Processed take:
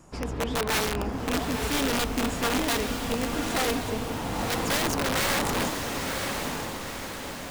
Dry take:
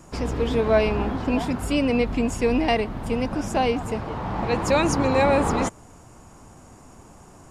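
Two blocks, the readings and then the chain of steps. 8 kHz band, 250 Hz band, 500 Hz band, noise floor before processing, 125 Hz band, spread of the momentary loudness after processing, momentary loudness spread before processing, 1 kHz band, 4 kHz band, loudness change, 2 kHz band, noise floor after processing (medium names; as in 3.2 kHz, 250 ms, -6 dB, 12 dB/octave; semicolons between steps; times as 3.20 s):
+5.5 dB, -5.5 dB, -7.5 dB, -48 dBFS, -5.0 dB, 8 LU, 8 LU, -3.5 dB, +5.0 dB, -4.5 dB, +1.0 dB, -37 dBFS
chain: integer overflow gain 15 dB; echo that smears into a reverb 978 ms, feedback 53%, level -4.5 dB; trim -5.5 dB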